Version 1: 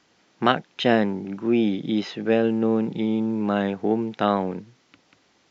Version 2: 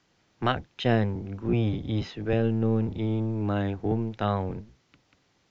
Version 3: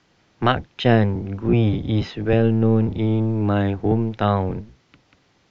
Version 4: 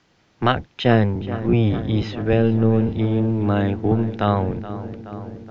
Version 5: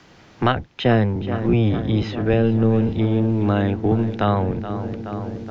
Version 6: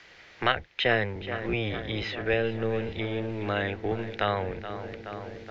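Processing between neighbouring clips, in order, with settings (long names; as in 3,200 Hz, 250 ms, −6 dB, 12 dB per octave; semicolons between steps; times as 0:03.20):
sub-octave generator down 1 octave, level +2 dB; level −6.5 dB
high-frequency loss of the air 54 metres; level +7.5 dB
feedback echo with a low-pass in the loop 424 ms, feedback 75%, low-pass 2,900 Hz, level −14 dB
multiband upward and downward compressor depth 40%
octave-band graphic EQ 125/250/500/1,000/2,000/4,000 Hz −7/−9/+4/−3/+12/+5 dB; level −7.5 dB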